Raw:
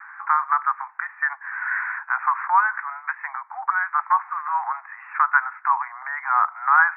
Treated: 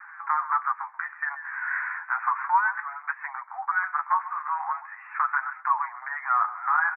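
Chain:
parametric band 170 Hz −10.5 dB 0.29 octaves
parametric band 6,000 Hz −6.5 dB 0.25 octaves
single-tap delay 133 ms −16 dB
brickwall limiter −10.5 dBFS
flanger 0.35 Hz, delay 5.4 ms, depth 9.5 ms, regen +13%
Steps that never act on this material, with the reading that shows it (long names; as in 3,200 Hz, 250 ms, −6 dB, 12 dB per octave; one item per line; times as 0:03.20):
parametric band 170 Hz: nothing at its input below 680 Hz
parametric band 6,000 Hz: nothing at its input above 2,300 Hz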